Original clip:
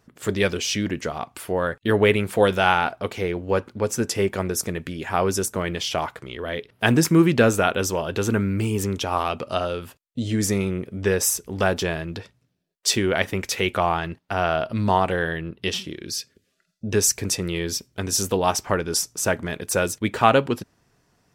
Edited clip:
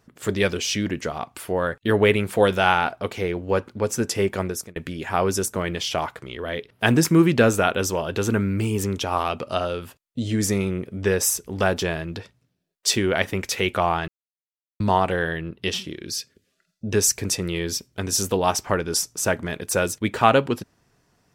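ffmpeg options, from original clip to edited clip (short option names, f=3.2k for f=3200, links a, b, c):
-filter_complex "[0:a]asplit=4[a][b][c][d];[a]atrim=end=4.76,asetpts=PTS-STARTPTS,afade=t=out:st=4.43:d=0.33[e];[b]atrim=start=4.76:end=14.08,asetpts=PTS-STARTPTS,afade=t=in:d=0.004:c=hsin,afade=t=out:st=9.316:d=0.004:c=hsin[f];[c]atrim=start=14.08:end=14.8,asetpts=PTS-STARTPTS,volume=0[g];[d]atrim=start=14.8,asetpts=PTS-STARTPTS,afade=t=in:d=0.004:c=hsin[h];[e][f][g][h]concat=n=4:v=0:a=1"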